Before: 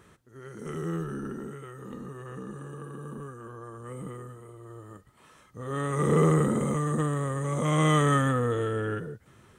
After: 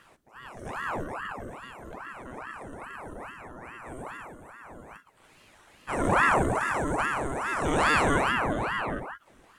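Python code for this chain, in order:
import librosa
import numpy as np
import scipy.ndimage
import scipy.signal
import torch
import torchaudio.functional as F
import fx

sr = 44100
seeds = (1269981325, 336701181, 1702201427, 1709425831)

y = fx.spec_freeze(x, sr, seeds[0], at_s=5.3, hold_s=0.58)
y = fx.ring_lfo(y, sr, carrier_hz=830.0, swing_pct=85, hz=2.4)
y = F.gain(torch.from_numpy(y), 2.0).numpy()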